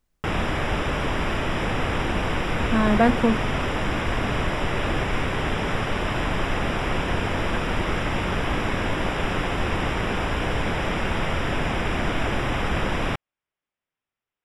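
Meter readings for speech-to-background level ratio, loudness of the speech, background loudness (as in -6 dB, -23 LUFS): 3.0 dB, -22.5 LUFS, -25.5 LUFS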